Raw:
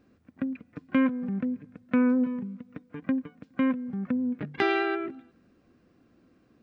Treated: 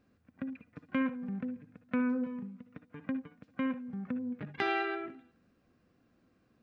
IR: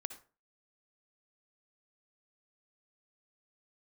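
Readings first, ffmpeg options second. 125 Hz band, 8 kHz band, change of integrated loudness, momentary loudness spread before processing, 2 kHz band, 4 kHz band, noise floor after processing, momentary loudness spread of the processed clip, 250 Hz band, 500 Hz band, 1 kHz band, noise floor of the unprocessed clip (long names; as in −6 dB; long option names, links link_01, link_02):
−6.5 dB, can't be measured, −7.5 dB, 14 LU, −5.0 dB, −5.0 dB, −72 dBFS, 15 LU, −8.0 dB, −8.0 dB, −4.5 dB, −65 dBFS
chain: -filter_complex "[0:a]equalizer=frequency=330:width=1.6:gain=-5[link_01];[1:a]atrim=start_sample=2205,atrim=end_sample=3528[link_02];[link_01][link_02]afir=irnorm=-1:irlink=0,volume=-3dB"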